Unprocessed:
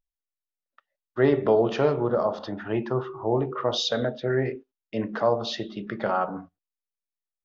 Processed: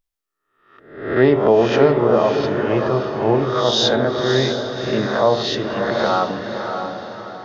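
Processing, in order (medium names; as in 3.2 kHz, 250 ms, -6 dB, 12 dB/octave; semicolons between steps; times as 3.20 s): reverse spectral sustain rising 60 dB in 0.64 s; echo that smears into a reverb 606 ms, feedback 45%, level -6 dB; trim +5.5 dB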